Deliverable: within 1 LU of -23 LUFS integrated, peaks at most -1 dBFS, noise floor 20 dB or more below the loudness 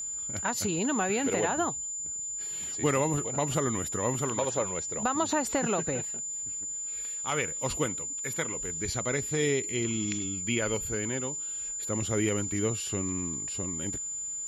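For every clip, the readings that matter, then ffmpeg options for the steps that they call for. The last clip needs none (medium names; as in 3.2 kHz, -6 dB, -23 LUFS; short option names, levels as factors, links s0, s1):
steady tone 7.1 kHz; tone level -33 dBFS; loudness -29.5 LUFS; peak level -15.5 dBFS; loudness target -23.0 LUFS
-> -af "bandreject=f=7100:w=30"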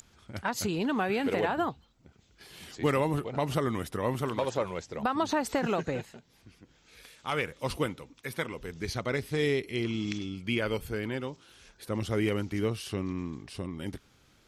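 steady tone not found; loudness -32.0 LUFS; peak level -16.0 dBFS; loudness target -23.0 LUFS
-> -af "volume=2.82"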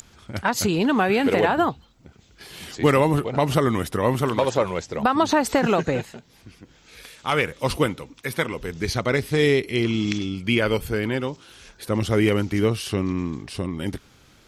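loudness -23.0 LUFS; peak level -7.0 dBFS; noise floor -55 dBFS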